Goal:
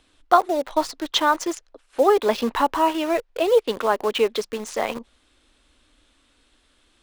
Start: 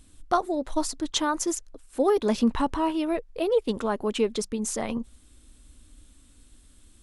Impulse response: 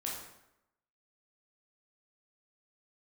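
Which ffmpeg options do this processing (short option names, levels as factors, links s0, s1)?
-filter_complex "[0:a]acrossover=split=390 4700:gain=0.126 1 0.112[s0][s1][s2];[s0][s1][s2]amix=inputs=3:normalize=0,asplit=2[s3][s4];[s4]acrusher=bits=5:mix=0:aa=0.000001,volume=0.447[s5];[s3][s5]amix=inputs=2:normalize=0,volume=1.88"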